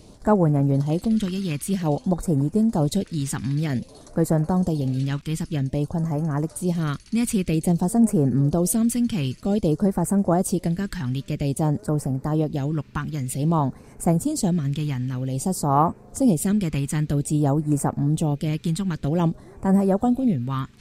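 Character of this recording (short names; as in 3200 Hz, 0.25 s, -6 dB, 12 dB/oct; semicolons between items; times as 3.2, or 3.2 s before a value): phasing stages 2, 0.52 Hz, lowest notch 610–3300 Hz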